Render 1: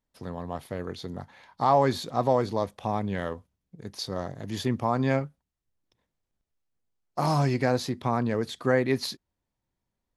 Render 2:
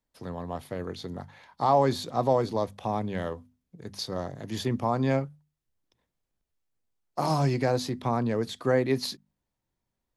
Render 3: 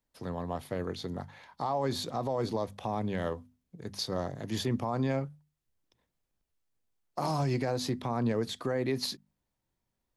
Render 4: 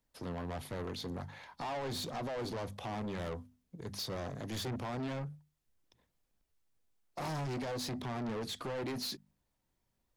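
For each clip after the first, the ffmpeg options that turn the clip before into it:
-filter_complex "[0:a]bandreject=f=50:t=h:w=6,bandreject=f=100:t=h:w=6,bandreject=f=150:t=h:w=6,bandreject=f=200:t=h:w=6,bandreject=f=250:t=h:w=6,acrossover=split=110|1400|2100[s0][s1][s2][s3];[s2]acompressor=threshold=0.00251:ratio=6[s4];[s0][s1][s4][s3]amix=inputs=4:normalize=0"
-af "alimiter=limit=0.0891:level=0:latency=1:release=90"
-af "aphaser=in_gain=1:out_gain=1:delay=4.8:decay=0.21:speed=1.5:type=triangular,asoftclip=type=tanh:threshold=0.0141,volume=1.19"

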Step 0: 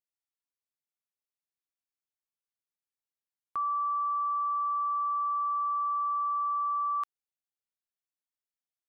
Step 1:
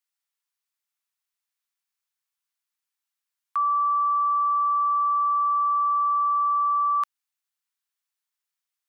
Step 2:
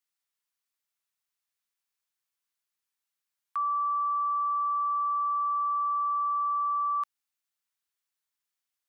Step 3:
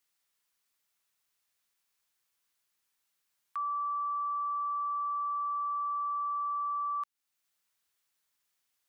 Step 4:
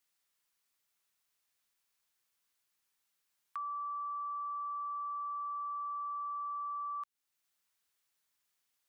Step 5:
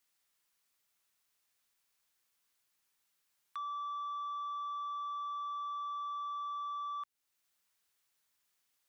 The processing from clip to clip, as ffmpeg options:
-af "highpass=f=910:w=0.5412,highpass=f=910:w=1.3066,volume=2.51"
-af "alimiter=limit=0.0631:level=0:latency=1:release=20,volume=0.891"
-af "alimiter=level_in=4.47:limit=0.0631:level=0:latency=1:release=434,volume=0.224,volume=2.24"
-af "acompressor=threshold=0.0158:ratio=6,volume=0.841"
-af "asoftclip=type=tanh:threshold=0.0126,volume=1.26"

